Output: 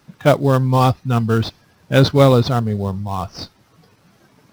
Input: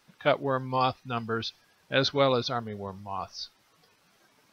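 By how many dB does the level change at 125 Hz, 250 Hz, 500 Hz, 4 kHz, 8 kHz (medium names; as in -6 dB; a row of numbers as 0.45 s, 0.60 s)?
+20.5 dB, +15.5 dB, +11.0 dB, +5.0 dB, no reading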